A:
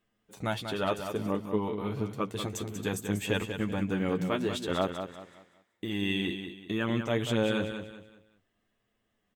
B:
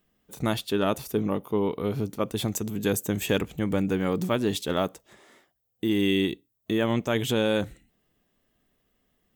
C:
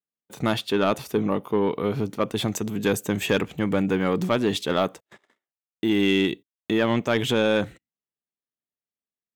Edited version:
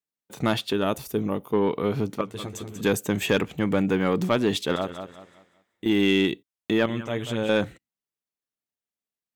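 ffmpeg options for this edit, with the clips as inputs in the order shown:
-filter_complex "[0:a]asplit=3[s0][s1][s2];[2:a]asplit=5[s3][s4][s5][s6][s7];[s3]atrim=end=0.732[s8];[1:a]atrim=start=0.728:end=1.532[s9];[s4]atrim=start=1.528:end=2.212[s10];[s0]atrim=start=2.208:end=2.812[s11];[s5]atrim=start=2.808:end=4.762[s12];[s1]atrim=start=4.758:end=5.862[s13];[s6]atrim=start=5.858:end=6.862[s14];[s2]atrim=start=6.858:end=7.492[s15];[s7]atrim=start=7.488[s16];[s8][s9]acrossfade=d=0.004:c1=hsin:c2=hsin[s17];[s17][s10]acrossfade=d=0.004:c1=hsin:c2=hsin[s18];[s18][s11]acrossfade=d=0.004:c1=hsin:c2=hsin[s19];[s19][s12]acrossfade=d=0.004:c1=hsin:c2=hsin[s20];[s20][s13]acrossfade=d=0.004:c1=hsin:c2=hsin[s21];[s21][s14]acrossfade=d=0.004:c1=hsin:c2=hsin[s22];[s22][s15]acrossfade=d=0.004:c1=hsin:c2=hsin[s23];[s23][s16]acrossfade=d=0.004:c1=hsin:c2=hsin"

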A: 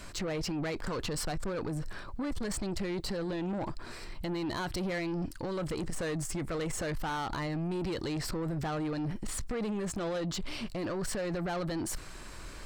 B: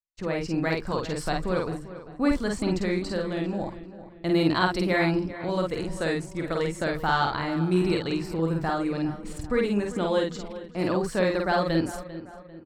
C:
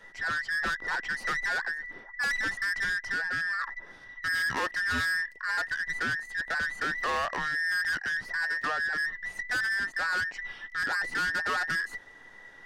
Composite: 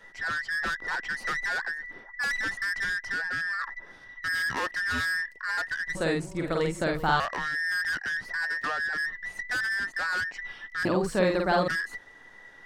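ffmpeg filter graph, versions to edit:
-filter_complex "[1:a]asplit=2[s0][s1];[2:a]asplit=3[s2][s3][s4];[s2]atrim=end=5.952[s5];[s0]atrim=start=5.948:end=7.202[s6];[s3]atrim=start=7.198:end=10.852[s7];[s1]atrim=start=10.848:end=11.682[s8];[s4]atrim=start=11.678[s9];[s5][s6]acrossfade=d=0.004:c1=hsin:c2=hsin[s10];[s10][s7]acrossfade=d=0.004:c1=hsin:c2=hsin[s11];[s11][s8]acrossfade=d=0.004:c1=hsin:c2=hsin[s12];[s12][s9]acrossfade=d=0.004:c1=hsin:c2=hsin"

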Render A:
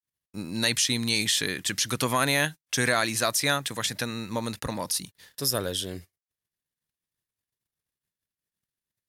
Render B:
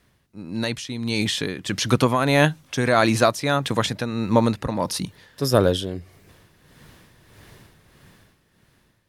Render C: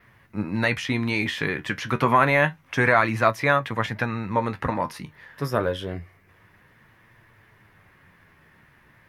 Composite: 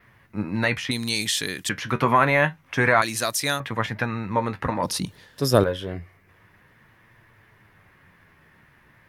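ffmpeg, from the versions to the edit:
-filter_complex "[0:a]asplit=2[s0][s1];[2:a]asplit=4[s2][s3][s4][s5];[s2]atrim=end=0.912[s6];[s0]atrim=start=0.908:end=1.692[s7];[s3]atrim=start=1.688:end=3.022[s8];[s1]atrim=start=3.018:end=3.602[s9];[s4]atrim=start=3.598:end=4.832[s10];[1:a]atrim=start=4.828:end=5.642[s11];[s5]atrim=start=5.638[s12];[s6][s7]acrossfade=d=0.004:c1=hsin:c2=hsin[s13];[s13][s8]acrossfade=d=0.004:c1=hsin:c2=hsin[s14];[s14][s9]acrossfade=d=0.004:c1=hsin:c2=hsin[s15];[s15][s10]acrossfade=d=0.004:c1=hsin:c2=hsin[s16];[s16][s11]acrossfade=d=0.004:c1=hsin:c2=hsin[s17];[s17][s12]acrossfade=d=0.004:c1=hsin:c2=hsin"

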